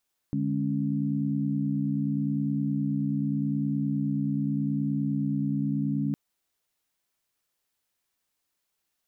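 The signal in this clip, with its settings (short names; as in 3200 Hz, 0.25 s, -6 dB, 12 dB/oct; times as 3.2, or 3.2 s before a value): chord D3/G#3/C#4 sine, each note -29 dBFS 5.81 s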